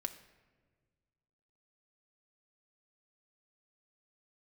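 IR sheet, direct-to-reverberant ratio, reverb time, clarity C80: 6.0 dB, no single decay rate, 14.5 dB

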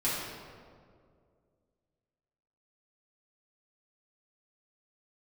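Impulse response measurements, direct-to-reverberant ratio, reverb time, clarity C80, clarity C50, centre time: -10.5 dB, 2.2 s, 1.0 dB, -1.0 dB, 105 ms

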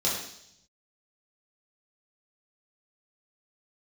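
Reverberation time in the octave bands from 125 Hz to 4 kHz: 1.2 s, 0.95 s, 0.75 s, 0.65 s, 0.75 s, 0.95 s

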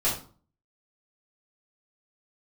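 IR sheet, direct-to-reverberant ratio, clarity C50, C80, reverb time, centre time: -9.5 dB, 6.0 dB, 11.5 dB, 0.40 s, 30 ms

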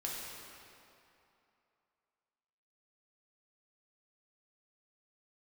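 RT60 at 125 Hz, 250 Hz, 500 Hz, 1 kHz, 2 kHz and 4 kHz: 2.4 s, 2.6 s, 2.7 s, 2.9 s, 2.4 s, 2.0 s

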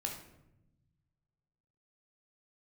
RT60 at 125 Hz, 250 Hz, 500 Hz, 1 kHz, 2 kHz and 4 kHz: 2.2 s, 1.6 s, 1.0 s, 0.75 s, 0.70 s, 0.50 s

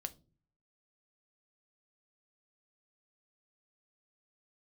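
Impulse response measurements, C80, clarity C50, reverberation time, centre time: 26.5 dB, 20.5 dB, no single decay rate, 3 ms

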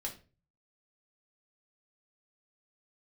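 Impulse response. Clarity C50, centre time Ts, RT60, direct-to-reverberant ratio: 11.0 dB, 15 ms, 0.35 s, -1.5 dB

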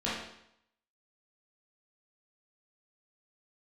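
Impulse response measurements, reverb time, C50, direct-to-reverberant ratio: 0.75 s, 0.5 dB, -9.0 dB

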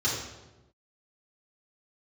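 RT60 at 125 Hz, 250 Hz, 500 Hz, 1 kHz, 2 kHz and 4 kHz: 1.4 s, 1.2 s, 1.2 s, 0.95 s, 0.85 s, 0.80 s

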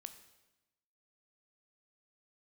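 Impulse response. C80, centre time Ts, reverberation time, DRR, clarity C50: 13.0 dB, 11 ms, 1.0 s, 9.0 dB, 11.0 dB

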